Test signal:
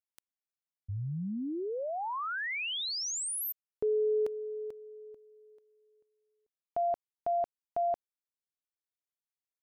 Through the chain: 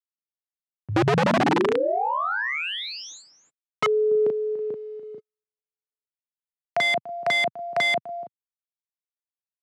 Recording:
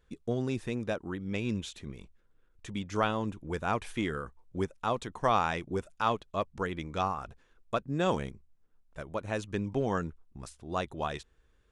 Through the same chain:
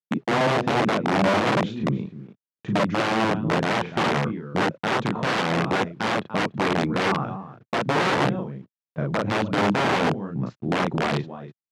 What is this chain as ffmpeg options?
-filter_complex "[0:a]equalizer=f=170:w=0.54:g=13,asplit=2[s0][s1];[s1]adelay=36,volume=0.75[s2];[s0][s2]amix=inputs=2:normalize=0,asplit=2[s3][s4];[s4]acompressor=threshold=0.0316:ratio=16:attack=4.6:release=50:knee=1:detection=rms,volume=0.841[s5];[s3][s5]amix=inputs=2:normalize=0,aresample=16000,aresample=44100,aecho=1:1:290:0.178,acrusher=bits=9:mix=0:aa=0.000001,aeval=exprs='(mod(7.5*val(0)+1,2)-1)/7.5':c=same,agate=range=0.00178:threshold=0.00562:ratio=16:release=54:detection=rms,adynamicsmooth=sensitivity=1:basefreq=3500,highpass=f=120:w=0.5412,highpass=f=120:w=1.3066,aemphasis=mode=reproduction:type=50fm,volume=1.33"

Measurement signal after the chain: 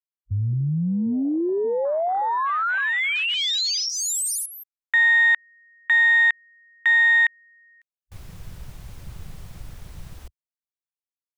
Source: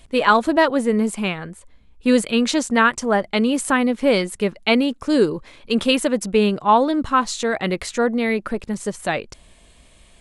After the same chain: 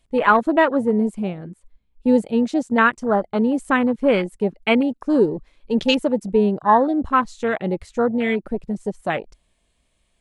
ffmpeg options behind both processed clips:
-af "afwtdn=0.0631"

